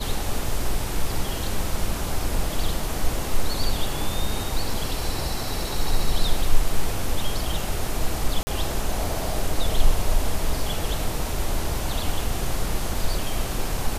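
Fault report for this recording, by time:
0:08.43–0:08.47: drop-out 40 ms

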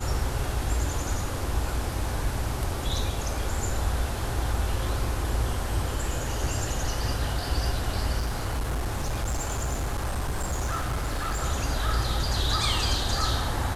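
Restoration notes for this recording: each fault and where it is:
0:08.18–0:11.38: clipping −24 dBFS

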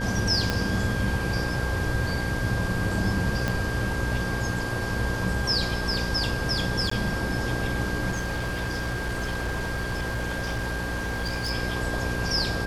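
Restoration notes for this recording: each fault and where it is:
mains buzz 60 Hz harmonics 9 −31 dBFS
whistle 1,600 Hz −32 dBFS
0:00.50: click −10 dBFS
0:03.48: click −12 dBFS
0:06.90–0:06.91: drop-out 14 ms
0:08.10–0:11.51: clipping −24.5 dBFS

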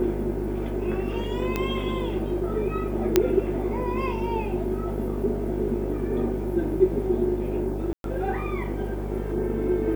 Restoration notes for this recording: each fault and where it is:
mains buzz 50 Hz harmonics 19 −31 dBFS
0:01.56: click −12 dBFS
0:03.16: click −3 dBFS
0:07.93–0:08.04: drop-out 112 ms

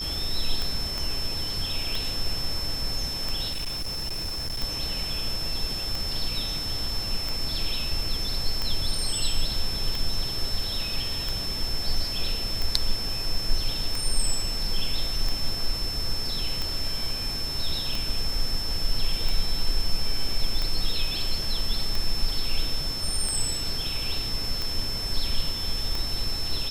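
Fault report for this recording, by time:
scratch tick 45 rpm
whistle 5,300 Hz −30 dBFS
0:00.98: click
0:03.51–0:04.63: clipping −26.5 dBFS

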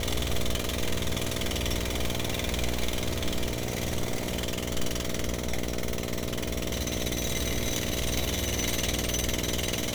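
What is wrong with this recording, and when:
mains buzz 60 Hz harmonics 11 −34 dBFS

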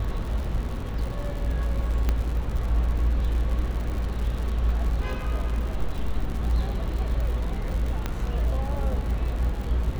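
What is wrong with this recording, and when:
surface crackle 120 per second −32 dBFS
0:02.09: click −12 dBFS
0:08.06: click −13 dBFS

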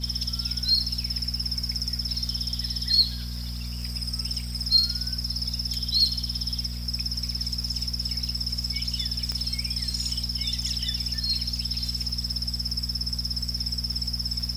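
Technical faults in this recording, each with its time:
surface crackle 44 per second −34 dBFS
mains hum 60 Hz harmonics 4 −33 dBFS
0:09.32: click −16 dBFS

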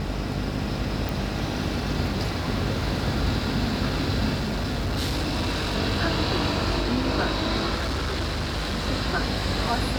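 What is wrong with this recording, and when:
mains buzz 50 Hz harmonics 17 −31 dBFS
0:01.09: click
0:04.34–0:05.76: clipping −22.5 dBFS
0:07.74–0:08.88: clipping −23.5 dBFS

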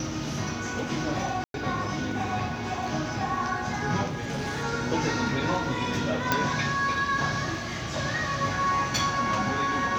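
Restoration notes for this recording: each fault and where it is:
0:01.44–0:01.54: drop-out 102 ms
0:04.09–0:04.64: clipping −27 dBFS
0:06.32: click

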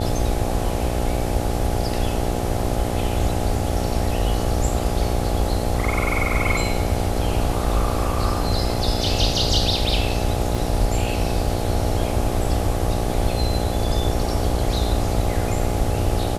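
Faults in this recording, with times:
mains buzz 60 Hz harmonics 14 −26 dBFS
0:10.55: drop-out 2.5 ms

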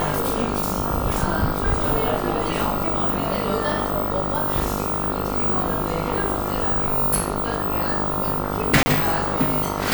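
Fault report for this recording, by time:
mains buzz 50 Hz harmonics 28 −27 dBFS
0:08.83–0:08.86: drop-out 30 ms

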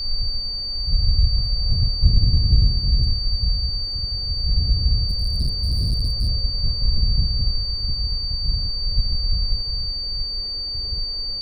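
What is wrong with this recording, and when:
whistle 4,600 Hz −25 dBFS
0:05.09–0:06.29: clipping −16.5 dBFS

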